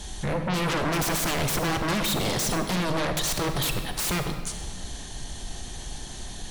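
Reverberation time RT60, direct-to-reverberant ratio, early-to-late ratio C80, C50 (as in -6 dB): 1.8 s, 6.0 dB, 8.0 dB, 6.5 dB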